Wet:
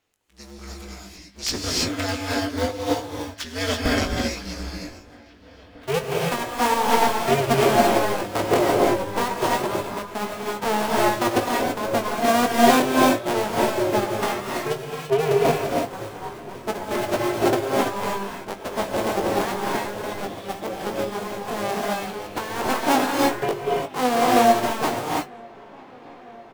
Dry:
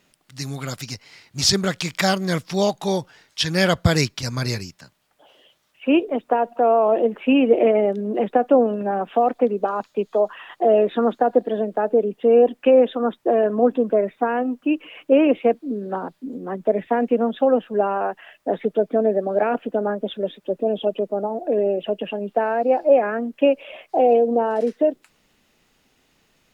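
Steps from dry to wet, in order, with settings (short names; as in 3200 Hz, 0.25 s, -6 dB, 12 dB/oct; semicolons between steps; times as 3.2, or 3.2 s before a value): cycle switcher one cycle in 2, inverted; notches 50/100/150/200 Hz; doubler 20 ms -6.5 dB; dark delay 0.949 s, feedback 84%, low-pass 3100 Hz, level -20 dB; non-linear reverb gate 0.36 s rising, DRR -3 dB; upward expander 1.5:1, over -23 dBFS; gain -5 dB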